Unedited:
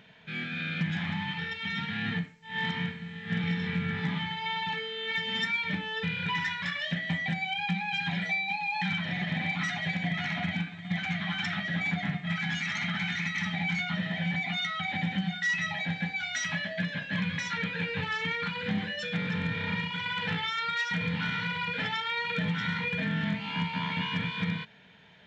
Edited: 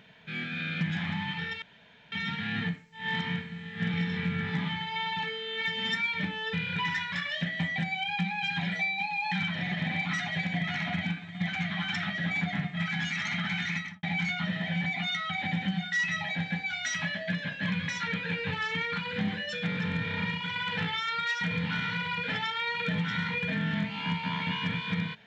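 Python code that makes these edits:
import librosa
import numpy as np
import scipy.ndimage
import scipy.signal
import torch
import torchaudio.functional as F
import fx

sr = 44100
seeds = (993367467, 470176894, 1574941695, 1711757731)

y = fx.studio_fade_out(x, sr, start_s=13.25, length_s=0.28)
y = fx.edit(y, sr, fx.insert_room_tone(at_s=1.62, length_s=0.5), tone=tone)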